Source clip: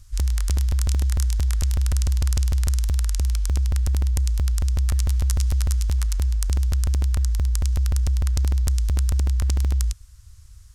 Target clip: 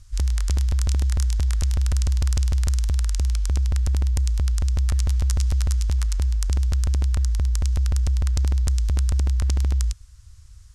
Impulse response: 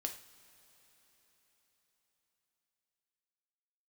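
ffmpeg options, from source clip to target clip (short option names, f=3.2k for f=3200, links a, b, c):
-af "lowpass=9.3k"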